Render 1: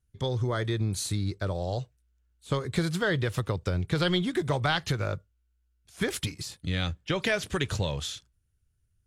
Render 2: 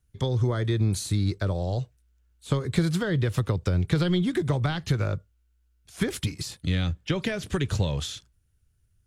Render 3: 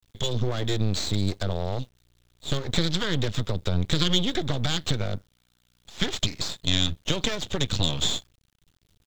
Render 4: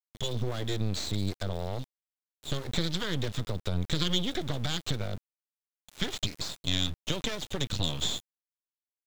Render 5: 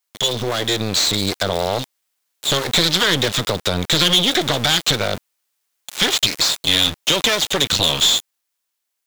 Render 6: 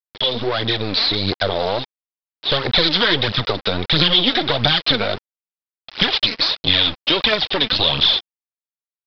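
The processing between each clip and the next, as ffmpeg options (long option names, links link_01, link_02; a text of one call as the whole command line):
ffmpeg -i in.wav -filter_complex "[0:a]acrossover=split=350[link_01][link_02];[link_02]acompressor=threshold=-37dB:ratio=4[link_03];[link_01][link_03]amix=inputs=2:normalize=0,volume=5dB" out.wav
ffmpeg -i in.wav -af "equalizer=frequency=3600:width_type=o:width=0.74:gain=14.5,aresample=16000,aeval=exprs='max(val(0),0)':channel_layout=same,aresample=44100,acrusher=bits=8:dc=4:mix=0:aa=0.000001,volume=2.5dB" out.wav
ffmpeg -i in.wav -af "aeval=exprs='val(0)*gte(abs(val(0)),0.0158)':channel_layout=same,volume=-5.5dB" out.wav
ffmpeg -i in.wav -filter_complex "[0:a]dynaudnorm=framelen=120:gausssize=17:maxgain=3.5dB,crystalizer=i=1:c=0,asplit=2[link_01][link_02];[link_02]highpass=frequency=720:poles=1,volume=22dB,asoftclip=type=tanh:threshold=-5.5dB[link_03];[link_01][link_03]amix=inputs=2:normalize=0,lowpass=frequency=6000:poles=1,volume=-6dB,volume=2dB" out.wav
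ffmpeg -i in.wav -af "aphaser=in_gain=1:out_gain=1:delay=4.7:decay=0.52:speed=1.5:type=triangular,aresample=11025,acrusher=bits=6:mix=0:aa=0.000001,aresample=44100,volume=-1dB" out.wav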